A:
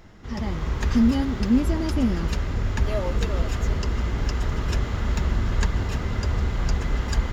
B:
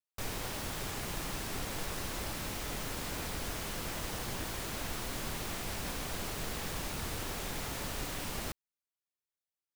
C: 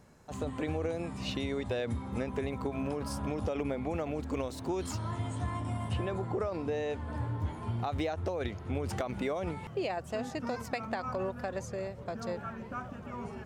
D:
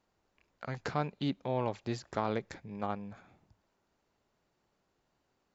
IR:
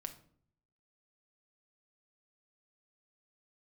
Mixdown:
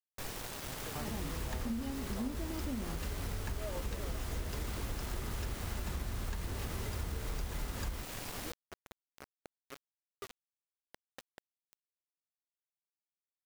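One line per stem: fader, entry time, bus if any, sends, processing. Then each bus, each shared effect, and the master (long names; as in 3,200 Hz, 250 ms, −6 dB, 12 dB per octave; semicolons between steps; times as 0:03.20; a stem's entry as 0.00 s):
−9.5 dB, 0.70 s, no send, mains-hum notches 60/120/180/240 Hz
−4.5 dB, 0.00 s, no send, mains-hum notches 50/100/150/200/250/300 Hz
−14.5 dB, 0.45 s, no send, phaser with its sweep stopped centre 410 Hz, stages 4
−12.0 dB, 0.00 s, no send, no processing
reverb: not used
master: high-shelf EQ 2,800 Hz −3.5 dB; bit reduction 7 bits; downward compressor, threshold −34 dBFS, peak gain reduction 10.5 dB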